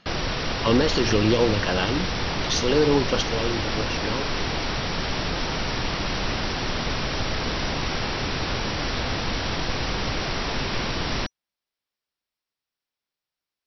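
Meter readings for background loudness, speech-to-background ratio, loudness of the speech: -26.5 LUFS, 2.0 dB, -24.5 LUFS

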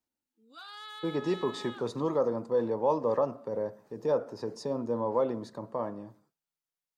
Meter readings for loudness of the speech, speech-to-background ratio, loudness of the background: -31.5 LUFS, 13.5 dB, -45.0 LUFS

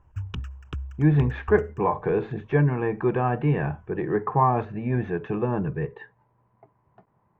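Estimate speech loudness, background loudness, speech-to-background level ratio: -25.0 LUFS, -37.0 LUFS, 12.0 dB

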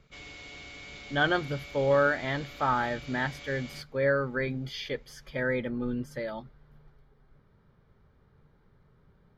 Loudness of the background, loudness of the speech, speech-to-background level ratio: -44.5 LUFS, -30.0 LUFS, 14.5 dB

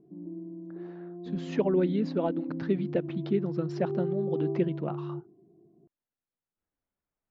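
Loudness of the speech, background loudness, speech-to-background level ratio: -31.0 LUFS, -36.0 LUFS, 5.0 dB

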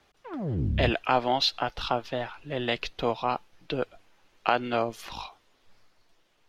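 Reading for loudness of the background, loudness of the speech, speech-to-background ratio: -31.5 LUFS, -29.0 LUFS, 2.5 dB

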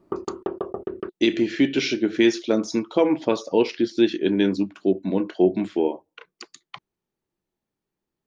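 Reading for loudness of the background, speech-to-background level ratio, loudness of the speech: -32.5 LUFS, 10.0 dB, -22.5 LUFS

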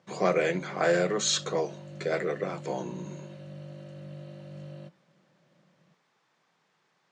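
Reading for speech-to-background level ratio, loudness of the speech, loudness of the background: 15.5 dB, -29.0 LUFS, -44.5 LUFS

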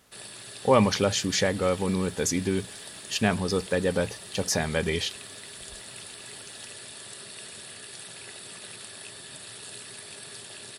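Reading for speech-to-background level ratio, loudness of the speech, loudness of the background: 14.0 dB, -26.5 LUFS, -40.5 LUFS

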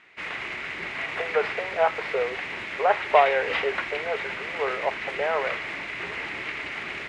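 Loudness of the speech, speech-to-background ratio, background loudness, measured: -26.5 LUFS, 4.0 dB, -30.5 LUFS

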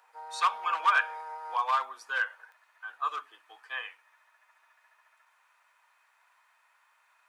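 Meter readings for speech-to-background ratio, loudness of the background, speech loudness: 11.0 dB, -41.5 LUFS, -30.5 LUFS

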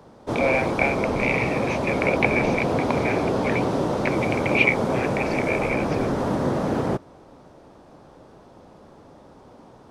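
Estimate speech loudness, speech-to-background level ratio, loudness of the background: -26.0 LUFS, -1.5 dB, -24.5 LUFS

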